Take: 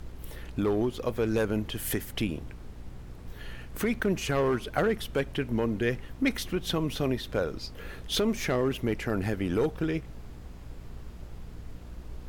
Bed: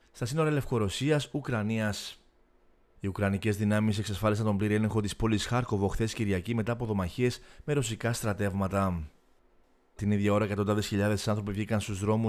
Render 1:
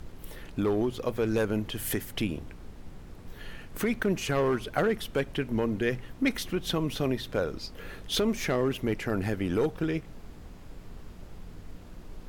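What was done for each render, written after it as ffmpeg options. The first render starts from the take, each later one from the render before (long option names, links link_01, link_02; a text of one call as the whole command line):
ffmpeg -i in.wav -af "bandreject=frequency=60:width_type=h:width=4,bandreject=frequency=120:width_type=h:width=4" out.wav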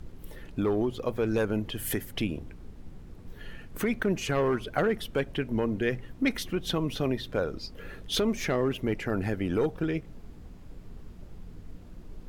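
ffmpeg -i in.wav -af "afftdn=noise_reduction=6:noise_floor=-47" out.wav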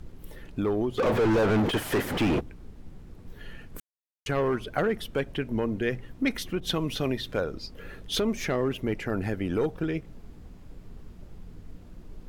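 ffmpeg -i in.wav -filter_complex "[0:a]asplit=3[link_01][link_02][link_03];[link_01]afade=type=out:start_time=0.97:duration=0.02[link_04];[link_02]asplit=2[link_05][link_06];[link_06]highpass=frequency=720:poles=1,volume=40dB,asoftclip=type=tanh:threshold=-15.5dB[link_07];[link_05][link_07]amix=inputs=2:normalize=0,lowpass=frequency=1100:poles=1,volume=-6dB,afade=type=in:start_time=0.97:duration=0.02,afade=type=out:start_time=2.39:duration=0.02[link_08];[link_03]afade=type=in:start_time=2.39:duration=0.02[link_09];[link_04][link_08][link_09]amix=inputs=3:normalize=0,asettb=1/sr,asplit=3[link_10][link_11][link_12];[link_10]atrim=end=6.604[link_13];[link_11]atrim=start=6.6:end=7.41,asetpts=PTS-STARTPTS,afade=type=in:duration=0.004:curve=qsin,afade=type=out:start_time=0.806:duration=0.004:curve=qsin,adynamicequalizer=threshold=0.00447:dfrequency=1500:dqfactor=0.7:tfrequency=1500:tqfactor=0.7:attack=5:release=100:ratio=0.375:range=2:mode=boostabove:tftype=highshelf[link_14];[link_12]atrim=start=7.406[link_15];[link_13][link_14]acrossfade=duration=0.004:curve1=hsin:curve2=qsin[link_16];[link_16][link_15]acrossfade=duration=0.004:curve1=qsin:curve2=hsin,asplit=3[link_17][link_18][link_19];[link_17]atrim=end=3.8,asetpts=PTS-STARTPTS,afade=type=out:start_time=3.796:duration=0.004:curve=hsin[link_20];[link_18]atrim=start=3.8:end=4.26,asetpts=PTS-STARTPTS,volume=0[link_21];[link_19]atrim=start=4.26,asetpts=PTS-STARTPTS,afade=type=in:duration=0.004:curve=hsin[link_22];[link_20][link_21][link_22]concat=n=3:v=0:a=1" out.wav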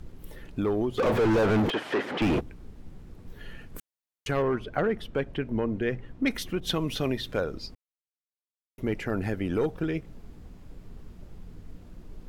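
ffmpeg -i in.wav -filter_complex "[0:a]asettb=1/sr,asplit=3[link_01][link_02][link_03];[link_01]atrim=end=1.704[link_04];[link_02]atrim=start=1.7:end=2.22,asetpts=PTS-STARTPTS,afade=type=in:duration=0.004:curve=qsin,afade=type=out:start_time=0.516:duration=0.004:curve=qsin,highpass=270,lowpass=3800[link_05];[link_03]atrim=start=2.216[link_06];[link_04][link_05]acrossfade=duration=0.004:curve1=hsin:curve2=qsin[link_07];[link_07][link_06]acrossfade=duration=0.004:curve1=qsin:curve2=hsin,asettb=1/sr,asplit=3[link_08][link_09][link_10];[link_08]atrim=end=4.424[link_11];[link_09]atrim=start=4.42:end=6.26,asetpts=PTS-STARTPTS,afade=type=in:duration=0.004:curve=qsin,afade=type=out:start_time=1.836:duration=0.004:curve=qsin,lowpass=frequency=2500:poles=1[link_12];[link_10]atrim=start=6.256[link_13];[link_11][link_12]acrossfade=duration=0.004:curve1=hsin:curve2=qsin[link_14];[link_14][link_13]acrossfade=duration=0.004:curve1=qsin:curve2=hsin,asplit=3[link_15][link_16][link_17];[link_15]atrim=end=7.75,asetpts=PTS-STARTPTS,afade=type=out:start_time=7.746:duration=0.004:curve=hsin[link_18];[link_16]atrim=start=7.75:end=8.78,asetpts=PTS-STARTPTS,volume=0[link_19];[link_17]atrim=start=8.78,asetpts=PTS-STARTPTS,afade=type=in:duration=0.004:curve=hsin[link_20];[link_18][link_19][link_20]concat=n=3:v=0:a=1" out.wav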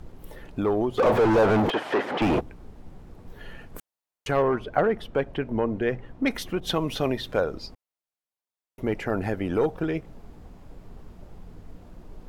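ffmpeg -i in.wav -af "equalizer=frequency=770:width=0.9:gain=7.5" out.wav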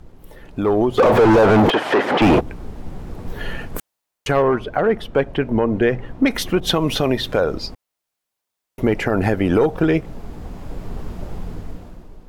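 ffmpeg -i in.wav -af "dynaudnorm=framelen=130:gausssize=11:maxgain=15.5dB,alimiter=limit=-7dB:level=0:latency=1:release=121" out.wav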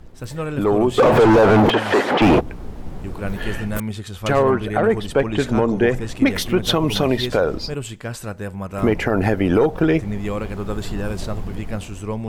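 ffmpeg -i in.wav -i bed.wav -filter_complex "[1:a]volume=0.5dB[link_01];[0:a][link_01]amix=inputs=2:normalize=0" out.wav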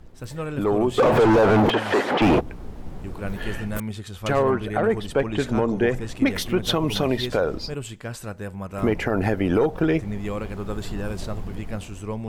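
ffmpeg -i in.wav -af "volume=-4dB" out.wav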